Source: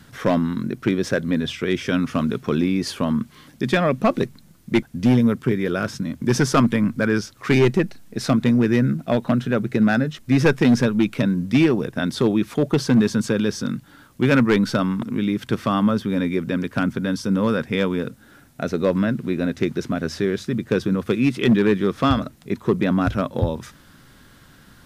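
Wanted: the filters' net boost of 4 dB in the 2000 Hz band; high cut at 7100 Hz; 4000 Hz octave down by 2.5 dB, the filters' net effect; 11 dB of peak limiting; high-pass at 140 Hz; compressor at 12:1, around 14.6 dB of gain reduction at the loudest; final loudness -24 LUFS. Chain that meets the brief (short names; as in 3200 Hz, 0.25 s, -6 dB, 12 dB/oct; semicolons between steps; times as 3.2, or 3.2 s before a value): HPF 140 Hz; LPF 7100 Hz; bell 2000 Hz +6.5 dB; bell 4000 Hz -5 dB; compressor 12:1, threshold -27 dBFS; gain +10 dB; limiter -12.5 dBFS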